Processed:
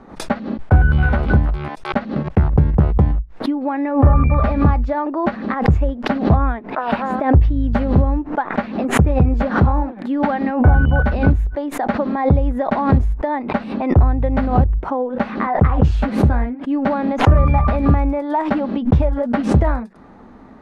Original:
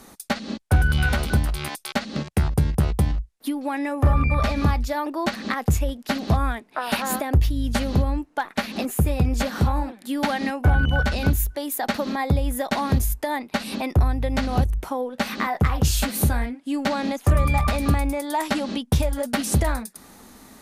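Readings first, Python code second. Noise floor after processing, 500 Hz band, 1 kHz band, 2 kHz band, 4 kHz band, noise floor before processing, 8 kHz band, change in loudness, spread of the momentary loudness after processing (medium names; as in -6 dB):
-38 dBFS, +7.0 dB, +6.0 dB, +1.5 dB, -6.0 dB, -53 dBFS, -10.5 dB, +6.0 dB, 8 LU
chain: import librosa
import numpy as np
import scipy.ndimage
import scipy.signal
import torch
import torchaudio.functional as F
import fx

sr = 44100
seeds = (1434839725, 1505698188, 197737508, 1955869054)

y = scipy.signal.sosfilt(scipy.signal.butter(2, 1300.0, 'lowpass', fs=sr, output='sos'), x)
y = fx.pre_swell(y, sr, db_per_s=120.0)
y = y * librosa.db_to_amplitude(6.0)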